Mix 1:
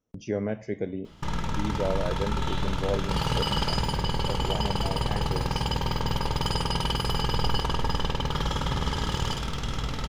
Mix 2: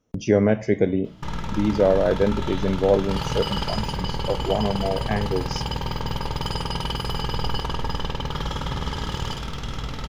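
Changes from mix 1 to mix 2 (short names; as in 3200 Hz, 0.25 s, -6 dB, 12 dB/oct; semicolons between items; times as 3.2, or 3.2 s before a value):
speech +11.0 dB; background: add bell 8500 Hz -4 dB 0.72 oct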